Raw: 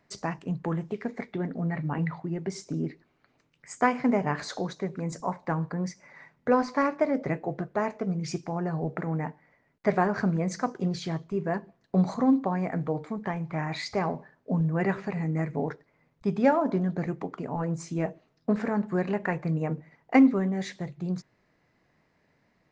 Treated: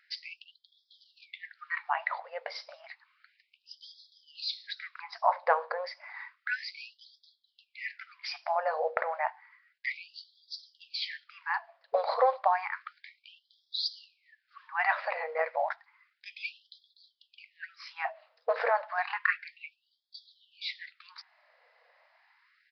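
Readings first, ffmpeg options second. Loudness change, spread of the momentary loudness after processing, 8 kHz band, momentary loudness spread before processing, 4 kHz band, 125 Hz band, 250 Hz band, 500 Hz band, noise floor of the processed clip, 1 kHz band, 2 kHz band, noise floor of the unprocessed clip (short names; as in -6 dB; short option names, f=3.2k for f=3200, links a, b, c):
-4.0 dB, 21 LU, under -15 dB, 10 LU, +6.0 dB, under -40 dB, under -40 dB, -5.0 dB, -78 dBFS, -0.5 dB, +2.0 dB, -70 dBFS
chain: -af "aresample=11025,aresample=44100,afftfilt=real='re*gte(b*sr/1024,450*pow(3300/450,0.5+0.5*sin(2*PI*0.31*pts/sr)))':imag='im*gte(b*sr/1024,450*pow(3300/450,0.5+0.5*sin(2*PI*0.31*pts/sr)))':win_size=1024:overlap=0.75,volume=7dB"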